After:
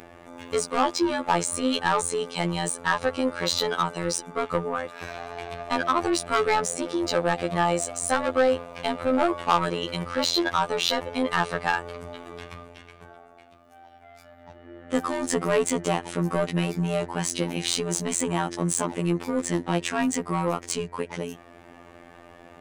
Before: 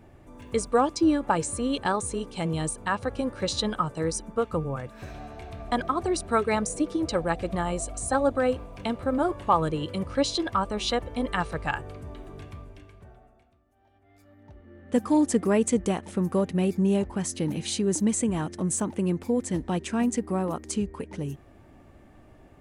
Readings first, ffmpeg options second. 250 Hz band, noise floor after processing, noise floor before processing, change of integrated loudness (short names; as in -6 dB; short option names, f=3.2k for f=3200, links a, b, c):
-2.0 dB, -50 dBFS, -55 dBFS, +1.0 dB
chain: -filter_complex "[0:a]asplit=2[a][b];[b]highpass=f=720:p=1,volume=21dB,asoftclip=type=tanh:threshold=-9dB[c];[a][c]amix=inputs=2:normalize=0,lowpass=f=5k:p=1,volume=-6dB,acompressor=mode=upward:threshold=-39dB:ratio=2.5,afftfilt=real='hypot(re,im)*cos(PI*b)':imag='0':win_size=2048:overlap=0.75,volume=-1dB"